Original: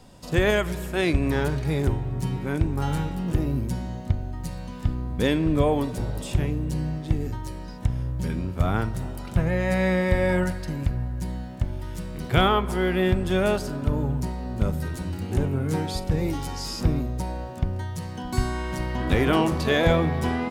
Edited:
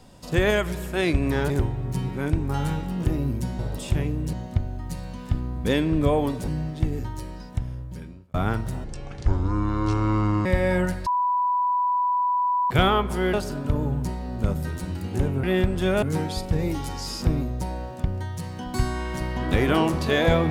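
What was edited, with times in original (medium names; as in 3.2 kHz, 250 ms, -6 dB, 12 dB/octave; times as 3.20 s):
1.50–1.78 s: delete
6.02–6.76 s: move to 3.87 s
7.53–8.62 s: fade out
9.12–10.04 s: speed 57%
10.65–12.29 s: bleep 988 Hz -19.5 dBFS
12.92–13.51 s: move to 15.61 s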